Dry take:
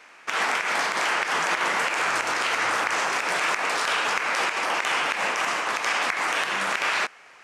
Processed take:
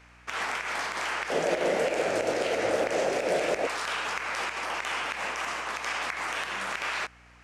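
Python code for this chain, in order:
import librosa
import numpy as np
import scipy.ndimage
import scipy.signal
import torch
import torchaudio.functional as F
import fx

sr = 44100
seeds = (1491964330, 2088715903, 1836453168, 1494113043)

y = fx.low_shelf_res(x, sr, hz=770.0, db=10.5, q=3.0, at=(1.3, 3.67))
y = fx.add_hum(y, sr, base_hz=60, snr_db=28)
y = F.gain(torch.from_numpy(y), -7.0).numpy()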